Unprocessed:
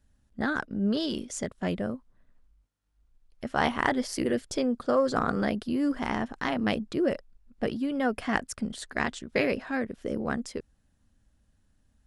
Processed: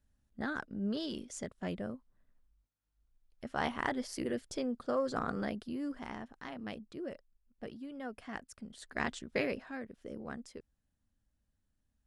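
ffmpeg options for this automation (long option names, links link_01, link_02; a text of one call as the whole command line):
ffmpeg -i in.wav -af "volume=2.5dB,afade=type=out:start_time=5.36:duration=0.94:silence=0.446684,afade=type=in:start_time=8.71:duration=0.41:silence=0.281838,afade=type=out:start_time=9.12:duration=0.66:silence=0.375837" out.wav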